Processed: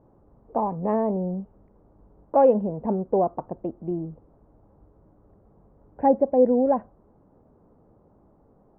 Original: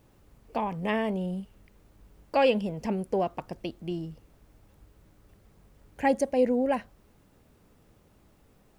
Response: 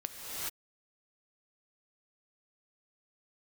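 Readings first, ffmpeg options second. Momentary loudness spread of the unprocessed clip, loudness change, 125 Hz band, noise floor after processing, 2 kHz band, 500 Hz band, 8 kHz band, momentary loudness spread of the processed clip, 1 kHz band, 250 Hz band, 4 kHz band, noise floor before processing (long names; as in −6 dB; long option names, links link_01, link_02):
13 LU, +5.0 dB, +3.5 dB, −59 dBFS, below −10 dB, +6.0 dB, below −25 dB, 13 LU, +5.0 dB, +4.5 dB, below −30 dB, −62 dBFS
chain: -af "lowpass=frequency=1000:width=0.5412,lowpass=frequency=1000:width=1.3066,lowshelf=frequency=140:gain=-8.5,volume=6.5dB"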